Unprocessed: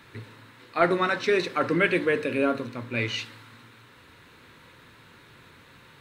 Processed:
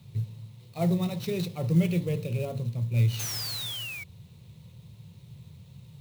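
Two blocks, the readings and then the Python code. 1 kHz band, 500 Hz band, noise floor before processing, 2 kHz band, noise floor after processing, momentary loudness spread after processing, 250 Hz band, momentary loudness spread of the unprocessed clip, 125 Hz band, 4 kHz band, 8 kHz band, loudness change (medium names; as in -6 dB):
-14.5 dB, -9.0 dB, -53 dBFS, -14.5 dB, -52 dBFS, 22 LU, 0.0 dB, 12 LU, +11.0 dB, +0.5 dB, +9.0 dB, -3.5 dB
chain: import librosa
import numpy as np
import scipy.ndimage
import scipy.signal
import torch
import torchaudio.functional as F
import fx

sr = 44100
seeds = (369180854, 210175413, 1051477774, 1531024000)

y = scipy.signal.sosfilt(scipy.signal.butter(2, 90.0, 'highpass', fs=sr, output='sos'), x)
y = fx.peak_eq(y, sr, hz=1300.0, db=-13.5, octaves=1.8)
y = fx.spec_paint(y, sr, seeds[0], shape='fall', start_s=3.19, length_s=0.85, low_hz=2200.0, high_hz=6500.0, level_db=-32.0)
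y = fx.low_shelf_res(y, sr, hz=270.0, db=14.0, q=1.5)
y = fx.fixed_phaser(y, sr, hz=650.0, stages=4)
y = fx.clock_jitter(y, sr, seeds[1], jitter_ms=0.023)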